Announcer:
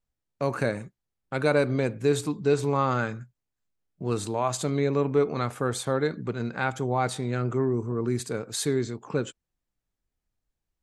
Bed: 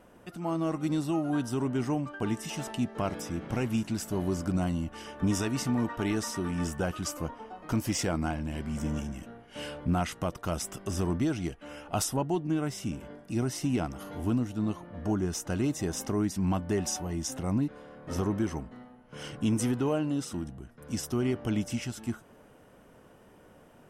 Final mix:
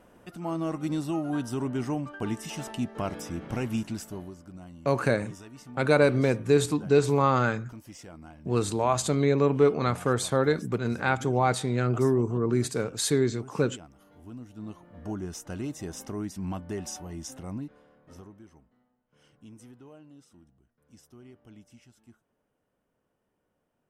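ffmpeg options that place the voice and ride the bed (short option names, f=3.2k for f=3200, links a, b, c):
-filter_complex "[0:a]adelay=4450,volume=2dB[a];[1:a]volume=10.5dB,afade=t=out:st=3.81:d=0.54:silence=0.158489,afade=t=in:st=14.28:d=0.79:silence=0.281838,afade=t=out:st=17.25:d=1.09:silence=0.149624[b];[a][b]amix=inputs=2:normalize=0"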